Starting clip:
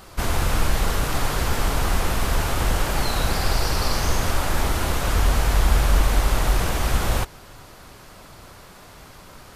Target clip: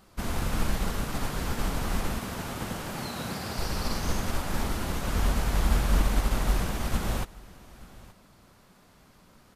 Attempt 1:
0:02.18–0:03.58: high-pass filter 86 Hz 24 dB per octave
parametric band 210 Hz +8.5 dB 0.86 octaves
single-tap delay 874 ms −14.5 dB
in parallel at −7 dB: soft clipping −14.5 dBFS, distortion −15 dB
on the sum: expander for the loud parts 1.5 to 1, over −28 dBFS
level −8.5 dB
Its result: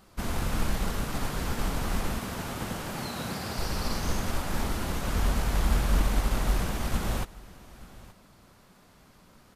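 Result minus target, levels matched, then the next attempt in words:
soft clipping: distortion +14 dB
0:02.18–0:03.58: high-pass filter 86 Hz 24 dB per octave
parametric band 210 Hz +8.5 dB 0.86 octaves
single-tap delay 874 ms −14.5 dB
in parallel at −7 dB: soft clipping −5 dBFS, distortion −28 dB
on the sum: expander for the loud parts 1.5 to 1, over −28 dBFS
level −8.5 dB

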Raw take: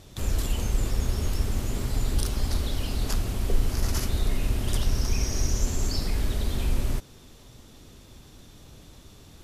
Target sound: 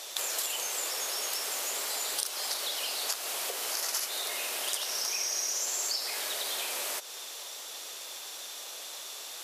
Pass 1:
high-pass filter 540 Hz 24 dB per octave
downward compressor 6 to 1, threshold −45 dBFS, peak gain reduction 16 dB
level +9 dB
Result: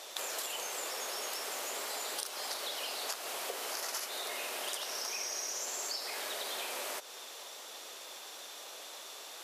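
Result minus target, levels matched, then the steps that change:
2,000 Hz band +3.0 dB
add after downward compressor: high-shelf EQ 2,600 Hz +8 dB

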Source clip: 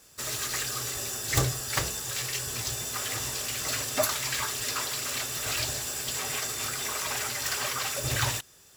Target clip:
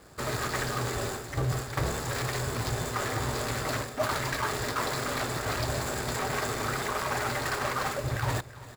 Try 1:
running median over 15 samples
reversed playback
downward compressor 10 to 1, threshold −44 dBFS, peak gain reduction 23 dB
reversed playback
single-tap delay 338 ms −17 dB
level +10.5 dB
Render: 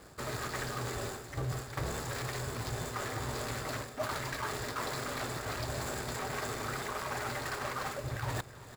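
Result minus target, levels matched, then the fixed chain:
downward compressor: peak gain reduction +7 dB
running median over 15 samples
reversed playback
downward compressor 10 to 1, threshold −36.5 dBFS, peak gain reduction 16.5 dB
reversed playback
single-tap delay 338 ms −17 dB
level +10.5 dB

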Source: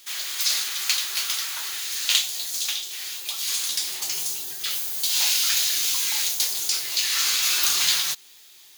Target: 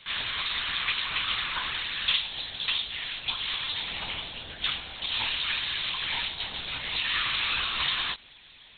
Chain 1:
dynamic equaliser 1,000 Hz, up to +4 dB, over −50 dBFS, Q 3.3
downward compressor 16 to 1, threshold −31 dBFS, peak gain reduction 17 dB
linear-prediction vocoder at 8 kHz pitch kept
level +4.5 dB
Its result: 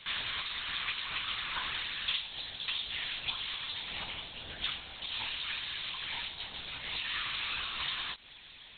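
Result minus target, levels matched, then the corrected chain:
downward compressor: peak gain reduction +8 dB
dynamic equaliser 1,000 Hz, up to +4 dB, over −50 dBFS, Q 3.3
downward compressor 16 to 1, threshold −22.5 dBFS, peak gain reduction 9 dB
linear-prediction vocoder at 8 kHz pitch kept
level +4.5 dB

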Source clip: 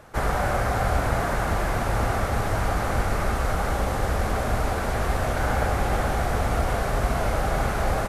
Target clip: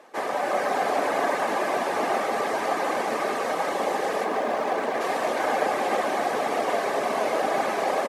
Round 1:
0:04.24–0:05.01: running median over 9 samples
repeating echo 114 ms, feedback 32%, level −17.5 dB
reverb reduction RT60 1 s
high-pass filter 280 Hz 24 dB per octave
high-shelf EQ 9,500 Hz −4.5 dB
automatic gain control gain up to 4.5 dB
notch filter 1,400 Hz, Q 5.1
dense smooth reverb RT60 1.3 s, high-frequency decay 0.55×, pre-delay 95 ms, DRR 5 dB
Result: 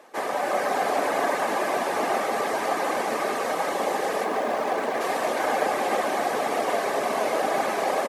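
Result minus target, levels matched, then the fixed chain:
8,000 Hz band +2.5 dB
0:04.24–0:05.01: running median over 9 samples
repeating echo 114 ms, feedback 32%, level −17.5 dB
reverb reduction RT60 1 s
high-pass filter 280 Hz 24 dB per octave
high-shelf EQ 9,500 Hz −12 dB
automatic gain control gain up to 4.5 dB
notch filter 1,400 Hz, Q 5.1
dense smooth reverb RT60 1.3 s, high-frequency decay 0.55×, pre-delay 95 ms, DRR 5 dB

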